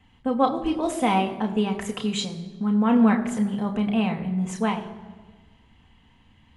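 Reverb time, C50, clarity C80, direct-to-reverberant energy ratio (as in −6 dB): 1.4 s, 11.5 dB, 13.0 dB, 2.5 dB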